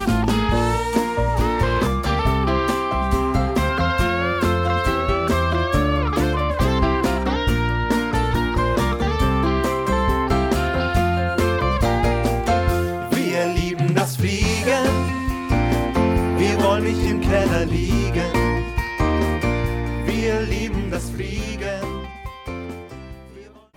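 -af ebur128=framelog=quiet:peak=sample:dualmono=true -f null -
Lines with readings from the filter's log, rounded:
Integrated loudness:
  I:         -17.5 LUFS
  Threshold: -27.8 LUFS
Loudness range:
  LRA:         3.3 LU
  Threshold: -37.6 LUFS
  LRA low:   -20.0 LUFS
  LRA high:  -16.7 LUFS
Sample peak:
  Peak:       -6.2 dBFS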